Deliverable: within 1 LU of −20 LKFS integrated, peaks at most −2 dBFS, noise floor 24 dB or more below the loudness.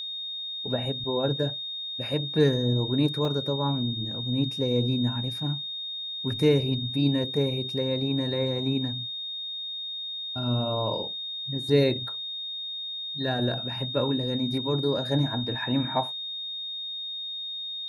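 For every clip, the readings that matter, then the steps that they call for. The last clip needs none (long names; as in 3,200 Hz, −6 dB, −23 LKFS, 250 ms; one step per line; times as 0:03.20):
number of dropouts 1; longest dropout 2.3 ms; interfering tone 3,700 Hz; level of the tone −32 dBFS; integrated loudness −27.5 LKFS; sample peak −8.5 dBFS; target loudness −20.0 LKFS
→ repair the gap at 0:03.25, 2.3 ms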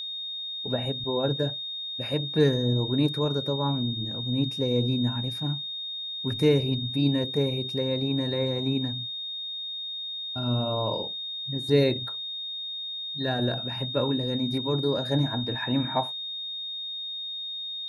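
number of dropouts 0; interfering tone 3,700 Hz; level of the tone −32 dBFS
→ notch filter 3,700 Hz, Q 30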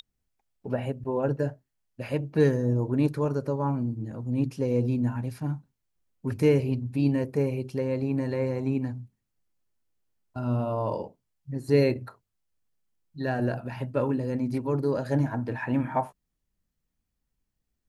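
interfering tone none found; integrated loudness −28.0 LKFS; sample peak −9.0 dBFS; target loudness −20.0 LKFS
→ level +8 dB
brickwall limiter −2 dBFS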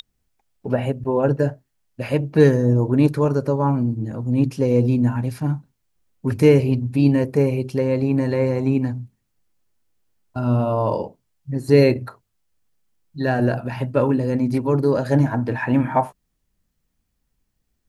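integrated loudness −20.0 LKFS; sample peak −2.0 dBFS; background noise floor −73 dBFS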